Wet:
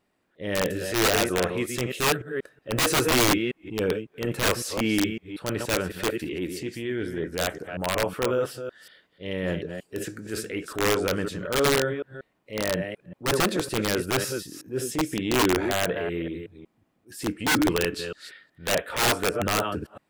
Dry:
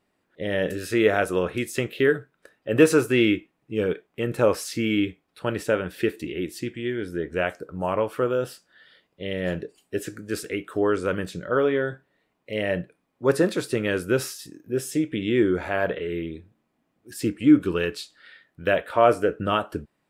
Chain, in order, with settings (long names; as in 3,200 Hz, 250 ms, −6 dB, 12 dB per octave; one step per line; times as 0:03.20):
delay that plays each chunk backwards 185 ms, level −8.5 dB
wrap-around overflow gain 14 dB
transient designer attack −7 dB, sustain +1 dB